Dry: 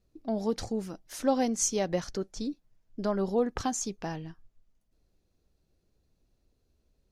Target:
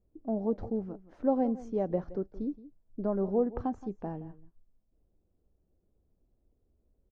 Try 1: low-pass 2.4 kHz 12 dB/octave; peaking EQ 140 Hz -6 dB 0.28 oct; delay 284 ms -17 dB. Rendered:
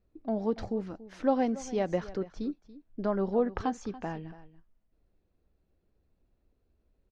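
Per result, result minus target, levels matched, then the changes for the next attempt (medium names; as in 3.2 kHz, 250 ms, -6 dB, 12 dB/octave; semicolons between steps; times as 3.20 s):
echo 112 ms late; 2 kHz band +13.0 dB
change: delay 172 ms -17 dB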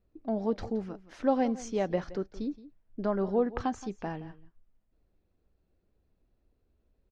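2 kHz band +13.0 dB
change: low-pass 740 Hz 12 dB/octave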